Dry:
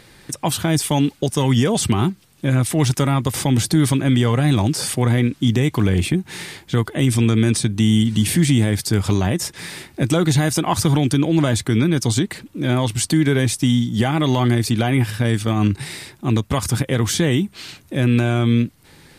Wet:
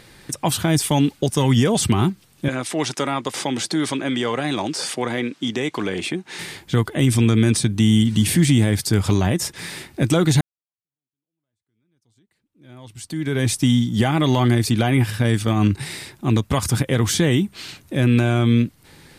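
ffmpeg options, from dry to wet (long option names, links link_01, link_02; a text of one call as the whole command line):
ffmpeg -i in.wav -filter_complex "[0:a]asettb=1/sr,asplit=3[link_01][link_02][link_03];[link_01]atrim=end=2.484[link_04];[link_02]atrim=start=2.48:end=6.39,asetpts=PTS-STARTPTS,afade=type=in:duration=0.004:curve=qsin,afade=type=out:start_time=3.906:duration=0.004:curve=qsin,highpass=330,lowpass=7400[link_05];[link_03]atrim=start=6.386[link_06];[link_04][link_05]acrossfade=duration=0.004:curve1=hsin:curve2=qsin[link_07];[link_07][link_06]acrossfade=duration=0.004:curve1=qsin:curve2=hsin,asplit=2[link_08][link_09];[link_08]atrim=end=10.41,asetpts=PTS-STARTPTS,afade=type=out:start_time=10.406:duration=0.004:curve=hsin[link_10];[link_09]atrim=start=10.41,asetpts=PTS-STARTPTS,afade=type=in:duration=3.08:curve=exp[link_11];[link_10][link_11]concat=n=2:v=0:a=1" out.wav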